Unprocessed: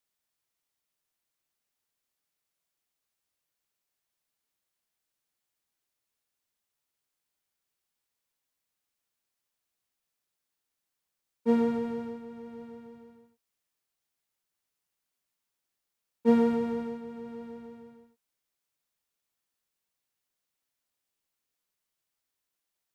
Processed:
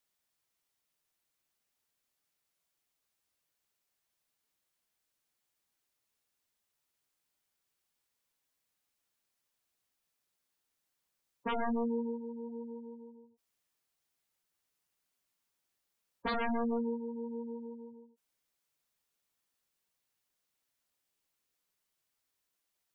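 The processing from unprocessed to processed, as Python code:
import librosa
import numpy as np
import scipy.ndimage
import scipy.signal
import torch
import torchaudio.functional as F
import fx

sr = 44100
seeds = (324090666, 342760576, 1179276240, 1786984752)

y = 10.0 ** (-28.5 / 20.0) * (np.abs((x / 10.0 ** (-28.5 / 20.0) + 3.0) % 4.0 - 2.0) - 1.0)
y = fx.spec_gate(y, sr, threshold_db=-15, keep='strong')
y = F.gain(torch.from_numpy(y), 1.5).numpy()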